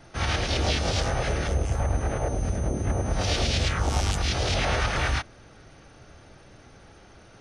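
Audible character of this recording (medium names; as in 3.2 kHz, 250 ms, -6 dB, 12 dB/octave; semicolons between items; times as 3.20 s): noise floor -52 dBFS; spectral tilt -4.5 dB/octave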